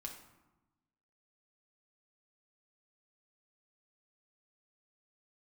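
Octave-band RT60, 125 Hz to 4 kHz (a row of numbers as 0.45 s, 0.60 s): 1.4 s, 1.4 s, 1.0 s, 1.1 s, 0.80 s, 0.60 s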